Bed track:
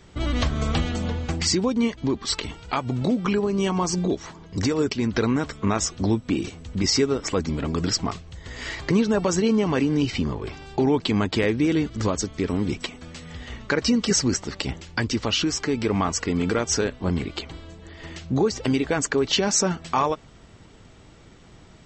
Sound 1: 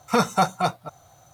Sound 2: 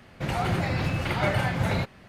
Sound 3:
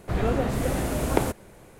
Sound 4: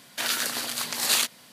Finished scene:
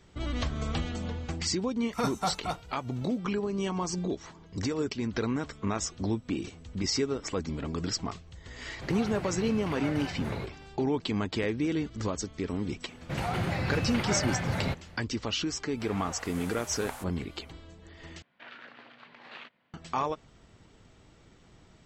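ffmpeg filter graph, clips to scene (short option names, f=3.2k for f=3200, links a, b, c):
-filter_complex "[2:a]asplit=2[a][b];[0:a]volume=-8dB[c];[1:a]aresample=32000,aresample=44100[d];[b]alimiter=limit=-17dB:level=0:latency=1:release=71[e];[3:a]highpass=f=740:w=0.5412,highpass=f=740:w=1.3066[f];[4:a]lowpass=f=2.7k:w=0.5412,lowpass=f=2.7k:w=1.3066[g];[c]asplit=2[h][i];[h]atrim=end=18.224[j];[g]atrim=end=1.52,asetpts=PTS-STARTPTS,volume=-16dB[k];[i]atrim=start=19.736[l];[d]atrim=end=1.33,asetpts=PTS-STARTPTS,volume=-10.5dB,afade=t=in:d=0.004:c=hsin,afade=t=out:st=1.326:d=0.004:c=hsin,adelay=1850[m];[a]atrim=end=2.08,asetpts=PTS-STARTPTS,volume=-11.5dB,afade=t=in:d=0.004:c=hsin,afade=t=out:st=2.076:d=0.004:c=hsin,adelay=8610[n];[e]atrim=end=2.08,asetpts=PTS-STARTPTS,volume=-3.5dB,afade=t=in:d=0.004:c=hsin,afade=t=out:st=2.076:d=0.004:c=hsin,adelay=12890[o];[f]atrim=end=1.79,asetpts=PTS-STARTPTS,volume=-10dB,afade=t=in:d=0.004:c=hsin,afade=t=out:st=1.786:d=0.004:c=hsin,adelay=693252S[p];[j][k]acrossfade=d=0.004:c1=hsin:c2=hsin[q];[q][l]acrossfade=d=0.004:c1=hsin:c2=hsin[r];[r][m][n][o][p]amix=inputs=5:normalize=0"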